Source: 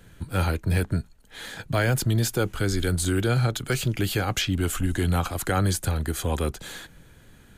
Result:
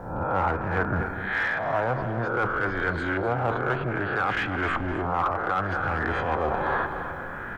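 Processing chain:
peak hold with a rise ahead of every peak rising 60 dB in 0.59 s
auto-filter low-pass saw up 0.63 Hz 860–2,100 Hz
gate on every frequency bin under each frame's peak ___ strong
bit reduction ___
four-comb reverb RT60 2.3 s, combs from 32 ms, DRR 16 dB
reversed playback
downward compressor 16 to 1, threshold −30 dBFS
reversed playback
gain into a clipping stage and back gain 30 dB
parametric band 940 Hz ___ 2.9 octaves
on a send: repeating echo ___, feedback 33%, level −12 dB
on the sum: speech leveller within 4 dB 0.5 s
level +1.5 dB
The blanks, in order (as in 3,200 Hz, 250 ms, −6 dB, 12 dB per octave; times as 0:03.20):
−45 dB, 12 bits, +13.5 dB, 256 ms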